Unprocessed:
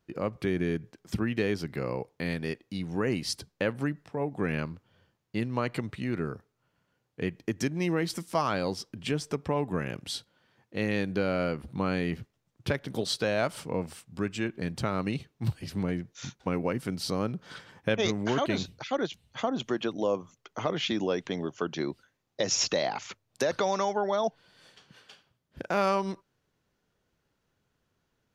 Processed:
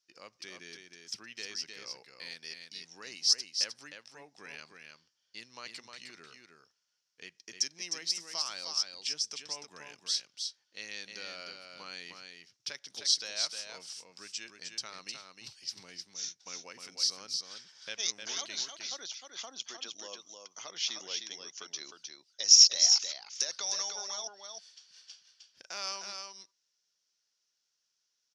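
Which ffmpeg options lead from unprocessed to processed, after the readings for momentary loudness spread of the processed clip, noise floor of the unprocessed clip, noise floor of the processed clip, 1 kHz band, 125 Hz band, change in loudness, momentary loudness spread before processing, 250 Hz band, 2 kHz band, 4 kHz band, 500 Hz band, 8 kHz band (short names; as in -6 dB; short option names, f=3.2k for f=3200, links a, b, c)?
19 LU, -78 dBFS, -81 dBFS, -15.5 dB, under -30 dB, +1.0 dB, 9 LU, -27.5 dB, -9.0 dB, +7.5 dB, -21.5 dB, +9.5 dB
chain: -af "lowpass=f=5.5k:t=q:w=5.3,aderivative,aecho=1:1:308:0.531"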